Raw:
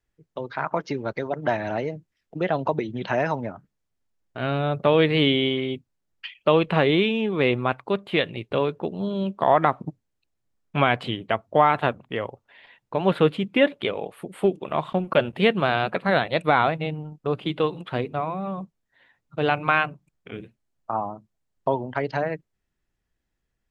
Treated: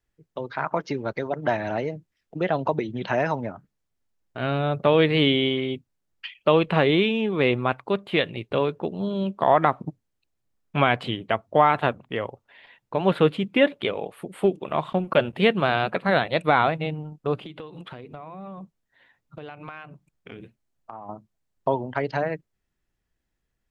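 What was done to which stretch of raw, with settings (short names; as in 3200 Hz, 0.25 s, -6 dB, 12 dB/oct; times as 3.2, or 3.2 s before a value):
17.41–21.09 compressor 8:1, threshold -35 dBFS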